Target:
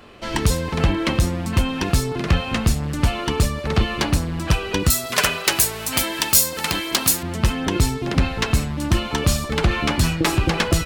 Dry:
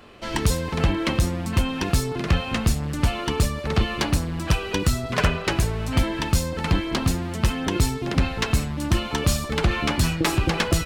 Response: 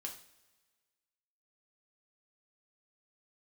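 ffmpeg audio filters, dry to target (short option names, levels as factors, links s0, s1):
-filter_complex "[0:a]asettb=1/sr,asplit=3[s0][s1][s2];[s0]atrim=end=4.904[s3];[s1]atrim=start=4.9:end=7.23,asetpts=PTS-STARTPTS,afade=t=in:d=0.004:c=qsin,afade=t=out:st=2.326:d=0.004:c=qsin,aemphasis=mode=production:type=riaa[s4];[s2]atrim=start=7.226[s5];[s3][s4]acrossfade=d=0.004:c1=hsin:c2=qsin[s6];[s6][s5]acrossfade=d=0.004:c1=qsin:c2=hsin,volume=1.33"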